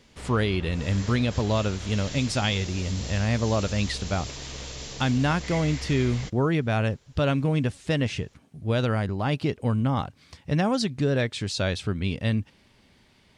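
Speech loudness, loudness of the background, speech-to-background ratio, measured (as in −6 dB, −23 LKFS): −26.5 LKFS, −37.0 LKFS, 10.5 dB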